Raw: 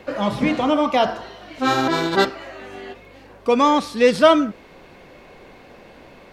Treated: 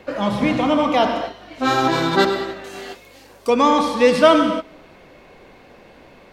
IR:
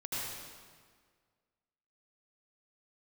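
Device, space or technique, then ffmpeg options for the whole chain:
keyed gated reverb: -filter_complex "[0:a]asplit=3[link_01][link_02][link_03];[1:a]atrim=start_sample=2205[link_04];[link_02][link_04]afir=irnorm=-1:irlink=0[link_05];[link_03]apad=whole_len=278965[link_06];[link_05][link_06]sidechaingate=range=-21dB:threshold=-35dB:ratio=16:detection=peak,volume=-7dB[link_07];[link_01][link_07]amix=inputs=2:normalize=0,asettb=1/sr,asplit=3[link_08][link_09][link_10];[link_08]atrim=end=2.644[link_11];[link_09]atrim=start=2.64:end=3.5,asetpts=PTS-STARTPTS,afade=type=in:duration=0.004:curve=qsin,afade=type=out:start_time=0.856:duration=0.004:curve=qsin,bass=frequency=250:gain=-4,treble=frequency=4000:gain=15[link_12];[link_10]atrim=start=3.496[link_13];[link_11][link_12]acrossfade=duration=0.004:curve1=hsin:curve2=qsin[link_14];[link_14][link_13]acrossfade=duration=0.004:curve1=qsin:curve2=hsin,volume=-1.5dB"

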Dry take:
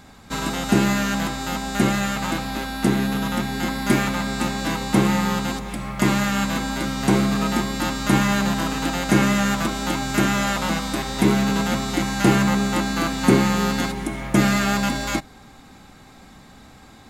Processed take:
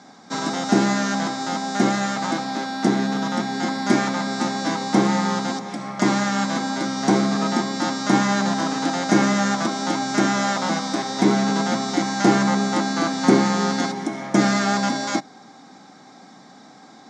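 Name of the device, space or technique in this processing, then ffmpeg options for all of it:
television speaker: -af "highpass=frequency=170:width=0.5412,highpass=frequency=170:width=1.3066,equalizer=frequency=290:width_type=q:width=4:gain=3,equalizer=frequency=740:width_type=q:width=4:gain=6,equalizer=frequency=2700:width_type=q:width=4:gain=-10,equalizer=frequency=5600:width_type=q:width=4:gain=8,lowpass=frequency=7000:width=0.5412,lowpass=frequency=7000:width=1.3066"

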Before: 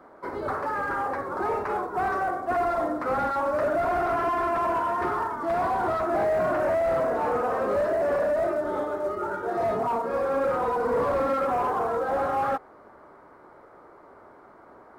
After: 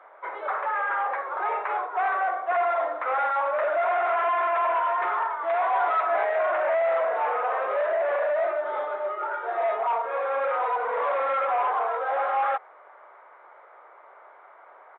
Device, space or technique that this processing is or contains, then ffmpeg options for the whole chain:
musical greeting card: -filter_complex "[0:a]asettb=1/sr,asplit=3[link_01][link_02][link_03];[link_01]atrim=end=5.724[link_04];[link_02]atrim=start=5.72:end=6.36,asetpts=PTS-STARTPTS,afade=type=in:duration=0.004:curve=qsin,afade=type=out:start_time=0.636:duration=0.004:curve=qsin,aecho=1:1:7:0.71,atrim=end_sample=28224[link_05];[link_03]atrim=start=6.356[link_06];[link_04][link_05]acrossfade=duration=0.004:curve1=hsin:curve2=qsin[link_07];[link_07][link_06]acrossfade=duration=0.004:curve1=qsin:curve2=hsin,aresample=8000,aresample=44100,highpass=frequency=580:width=0.5412,highpass=frequency=580:width=1.3066,equalizer=frequency=2200:width_type=o:width=0.49:gain=5.5,volume=2dB"

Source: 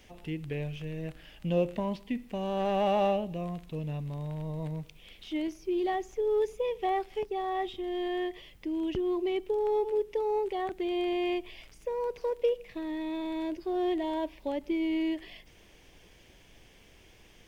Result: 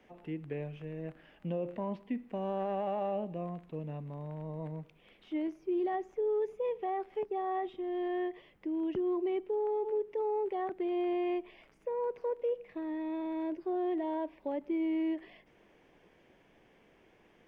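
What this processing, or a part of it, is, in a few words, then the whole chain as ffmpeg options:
DJ mixer with the lows and highs turned down: -filter_complex "[0:a]acrossover=split=150 2100:gain=0.158 1 0.126[link_01][link_02][link_03];[link_01][link_02][link_03]amix=inputs=3:normalize=0,alimiter=level_in=1dB:limit=-24dB:level=0:latency=1,volume=-1dB,volume=-1.5dB"

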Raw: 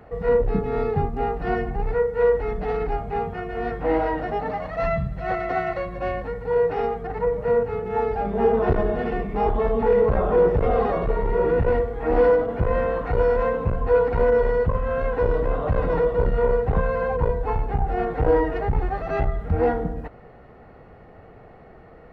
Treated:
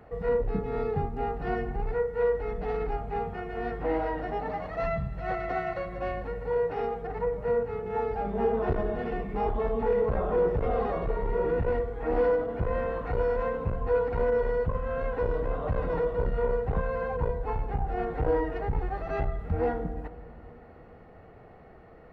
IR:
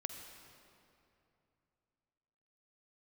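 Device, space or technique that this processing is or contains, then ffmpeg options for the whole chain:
ducked reverb: -filter_complex "[0:a]asplit=3[link_01][link_02][link_03];[1:a]atrim=start_sample=2205[link_04];[link_02][link_04]afir=irnorm=-1:irlink=0[link_05];[link_03]apad=whole_len=975614[link_06];[link_05][link_06]sidechaincompress=threshold=-22dB:ratio=8:attack=16:release=1210,volume=-2dB[link_07];[link_01][link_07]amix=inputs=2:normalize=0,volume=-9dB"

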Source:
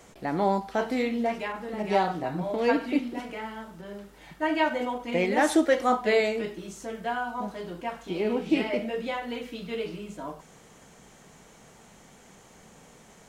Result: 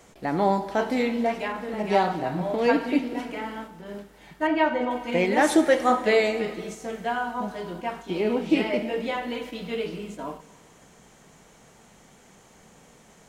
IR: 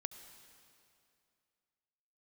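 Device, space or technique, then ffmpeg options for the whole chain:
keyed gated reverb: -filter_complex "[0:a]asplit=3[link_01][link_02][link_03];[1:a]atrim=start_sample=2205[link_04];[link_02][link_04]afir=irnorm=-1:irlink=0[link_05];[link_03]apad=whole_len=585791[link_06];[link_05][link_06]sidechaingate=range=-6dB:threshold=-41dB:ratio=16:detection=peak,volume=7.5dB[link_07];[link_01][link_07]amix=inputs=2:normalize=0,asettb=1/sr,asplit=3[link_08][link_09][link_10];[link_08]atrim=end=4.474[link_11];[link_09]atrim=start=4.47:end=4.91,asetpts=PTS-STARTPTS,afade=type=in:duration=0.004:curve=qsin,afade=type=out:start_time=0.436:duration=0.004:curve=qsin,aemphasis=mode=reproduction:type=75fm[link_12];[link_10]atrim=start=4.906[link_13];[link_11][link_12]acrossfade=duration=0.004:curve1=hsin:curve2=qsin[link_14];[link_14][link_13]acrossfade=duration=0.004:curve1=qsin:curve2=hsin,volume=-6dB"

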